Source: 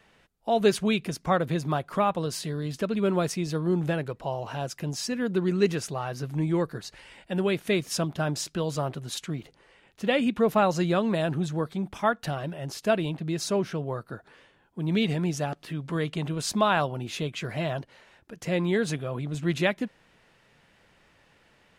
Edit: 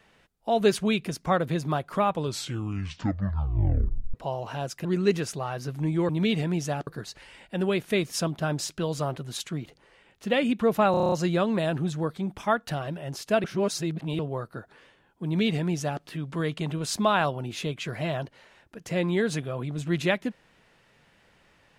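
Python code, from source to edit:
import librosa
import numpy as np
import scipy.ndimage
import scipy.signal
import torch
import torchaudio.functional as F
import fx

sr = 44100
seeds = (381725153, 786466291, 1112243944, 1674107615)

y = fx.edit(x, sr, fx.tape_stop(start_s=2.08, length_s=2.06),
    fx.cut(start_s=4.85, length_s=0.55),
    fx.stutter(start_s=10.68, slice_s=0.03, count=8),
    fx.reverse_span(start_s=13.0, length_s=0.75),
    fx.duplicate(start_s=14.81, length_s=0.78, to_s=6.64), tone=tone)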